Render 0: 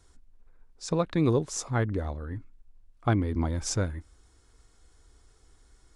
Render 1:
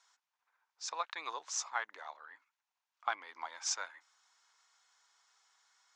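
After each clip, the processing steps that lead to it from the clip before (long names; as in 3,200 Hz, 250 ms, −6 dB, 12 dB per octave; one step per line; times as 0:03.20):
elliptic band-pass filter 880–6,600 Hz, stop band 80 dB
level −1 dB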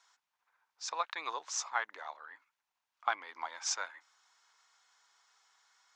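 high-shelf EQ 6,900 Hz −5.5 dB
level +3 dB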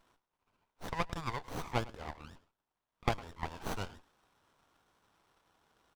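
running median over 3 samples
slap from a distant wall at 18 metres, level −20 dB
windowed peak hold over 17 samples
level +2 dB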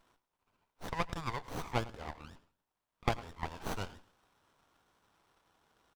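repeating echo 88 ms, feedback 46%, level −23.5 dB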